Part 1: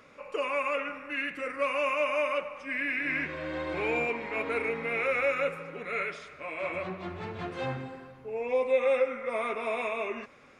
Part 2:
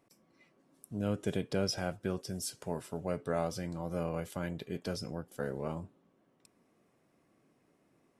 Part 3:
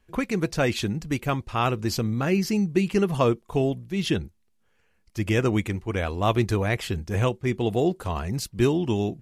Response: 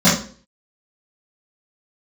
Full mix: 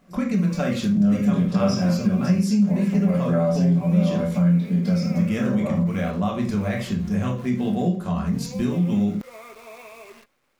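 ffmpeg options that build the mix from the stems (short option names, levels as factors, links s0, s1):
-filter_complex "[0:a]acrusher=bits=7:dc=4:mix=0:aa=0.000001,volume=0.282[s0];[1:a]volume=1.19,asplit=2[s1][s2];[s2]volume=0.188[s3];[2:a]alimiter=limit=0.211:level=0:latency=1:release=393,volume=0.668,asplit=2[s4][s5];[s5]volume=0.0841[s6];[3:a]atrim=start_sample=2205[s7];[s3][s6]amix=inputs=2:normalize=0[s8];[s8][s7]afir=irnorm=-1:irlink=0[s9];[s0][s1][s4][s9]amix=inputs=4:normalize=0,acompressor=threshold=0.0794:ratio=2"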